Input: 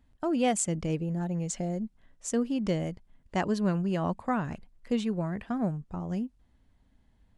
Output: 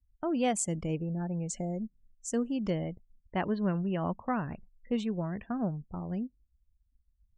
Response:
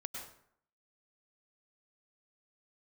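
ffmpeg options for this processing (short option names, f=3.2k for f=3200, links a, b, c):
-filter_complex "[0:a]asettb=1/sr,asplit=3[a][b][c];[a]atrim=end=2.704[d];[b]atrim=start=2.7:end=4.96,asetpts=PTS-STARTPTS,afade=t=in:d=0.004:c=qsin,afade=t=out:st=2.256:d=0.004:c=qsin,lowpass=f=3.8k:w=0.5412,lowpass=f=3.8k:w=1.3066[e];[c]atrim=start=4.956[f];[d][e]acrossfade=d=0.004:c1=hsin:c2=qsin[g];[g][f]acrossfade=d=0.004:c1=qsin:c2=hsin,afftdn=nr=35:nf=-49,volume=-2.5dB"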